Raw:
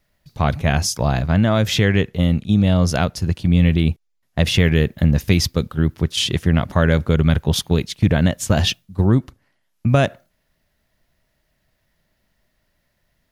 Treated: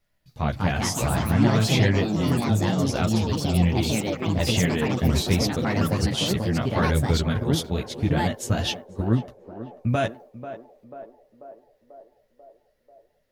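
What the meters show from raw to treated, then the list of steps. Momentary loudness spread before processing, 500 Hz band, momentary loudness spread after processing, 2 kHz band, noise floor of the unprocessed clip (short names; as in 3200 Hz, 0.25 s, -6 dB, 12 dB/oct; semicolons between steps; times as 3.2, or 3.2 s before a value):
6 LU, -4.0 dB, 13 LU, -5.0 dB, -69 dBFS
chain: chorus voices 4, 0.55 Hz, delay 13 ms, depth 4.7 ms; echoes that change speed 0.28 s, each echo +4 st, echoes 3; narrowing echo 0.49 s, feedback 69%, band-pass 550 Hz, level -10.5 dB; gain -4 dB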